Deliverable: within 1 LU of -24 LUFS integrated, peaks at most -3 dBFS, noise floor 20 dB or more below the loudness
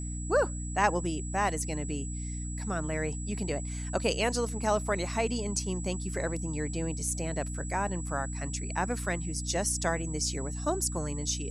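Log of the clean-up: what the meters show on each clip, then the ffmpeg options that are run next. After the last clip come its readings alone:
hum 60 Hz; highest harmonic 300 Hz; hum level -34 dBFS; steady tone 7.8 kHz; tone level -42 dBFS; loudness -31.5 LUFS; peak level -10.5 dBFS; loudness target -24.0 LUFS
-> -af "bandreject=f=60:t=h:w=4,bandreject=f=120:t=h:w=4,bandreject=f=180:t=h:w=4,bandreject=f=240:t=h:w=4,bandreject=f=300:t=h:w=4"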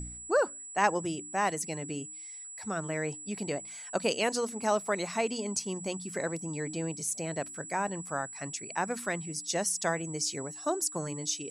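hum not found; steady tone 7.8 kHz; tone level -42 dBFS
-> -af "bandreject=f=7800:w=30"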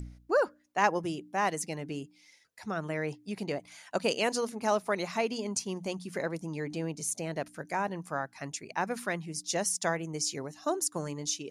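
steady tone not found; loudness -33.0 LUFS; peak level -10.5 dBFS; loudness target -24.0 LUFS
-> -af "volume=2.82,alimiter=limit=0.708:level=0:latency=1"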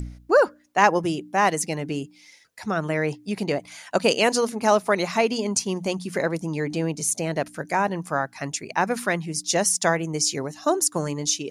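loudness -24.0 LUFS; peak level -3.0 dBFS; noise floor -54 dBFS

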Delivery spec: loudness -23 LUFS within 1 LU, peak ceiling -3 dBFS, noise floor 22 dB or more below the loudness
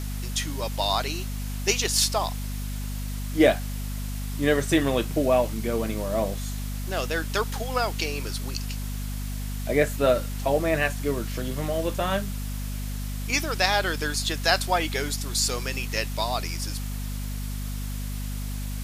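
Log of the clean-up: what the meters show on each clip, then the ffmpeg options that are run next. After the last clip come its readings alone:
hum 50 Hz; highest harmonic 250 Hz; hum level -29 dBFS; noise floor -31 dBFS; noise floor target -49 dBFS; loudness -26.5 LUFS; peak level -5.0 dBFS; loudness target -23.0 LUFS
-> -af "bandreject=f=50:t=h:w=4,bandreject=f=100:t=h:w=4,bandreject=f=150:t=h:w=4,bandreject=f=200:t=h:w=4,bandreject=f=250:t=h:w=4"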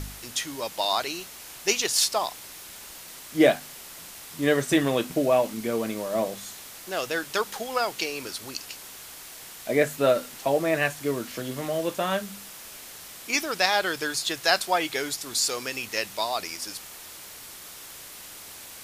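hum not found; noise floor -43 dBFS; noise floor target -48 dBFS
-> -af "afftdn=nr=6:nf=-43"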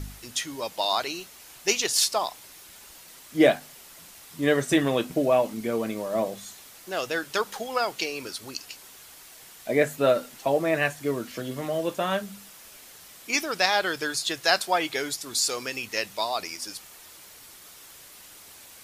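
noise floor -49 dBFS; loudness -26.5 LUFS; peak level -5.0 dBFS; loudness target -23.0 LUFS
-> -af "volume=1.5,alimiter=limit=0.708:level=0:latency=1"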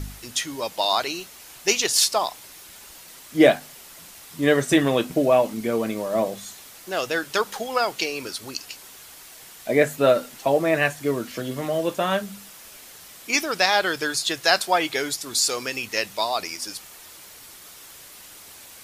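loudness -23.0 LUFS; peak level -3.0 dBFS; noise floor -45 dBFS

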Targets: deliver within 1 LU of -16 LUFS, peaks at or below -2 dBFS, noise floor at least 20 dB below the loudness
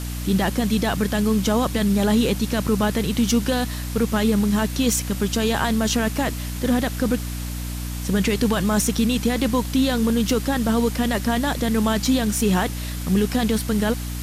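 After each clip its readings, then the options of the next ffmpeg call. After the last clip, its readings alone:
hum 60 Hz; highest harmonic 300 Hz; hum level -27 dBFS; noise floor -29 dBFS; noise floor target -42 dBFS; loudness -21.5 LUFS; peak level -8.0 dBFS; loudness target -16.0 LUFS
-> -af "bandreject=f=60:t=h:w=4,bandreject=f=120:t=h:w=4,bandreject=f=180:t=h:w=4,bandreject=f=240:t=h:w=4,bandreject=f=300:t=h:w=4"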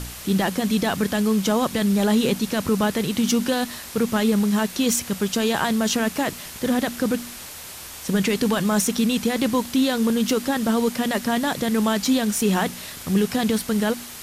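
hum not found; noise floor -38 dBFS; noise floor target -42 dBFS
-> -af "afftdn=nr=6:nf=-38"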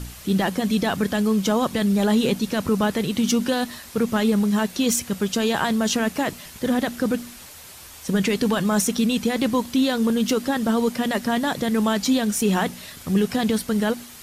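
noise floor -42 dBFS; loudness -22.0 LUFS; peak level -6.5 dBFS; loudness target -16.0 LUFS
-> -af "volume=2,alimiter=limit=0.794:level=0:latency=1"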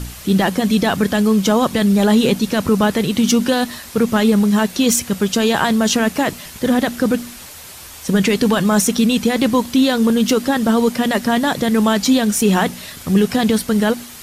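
loudness -16.0 LUFS; peak level -2.0 dBFS; noise floor -36 dBFS

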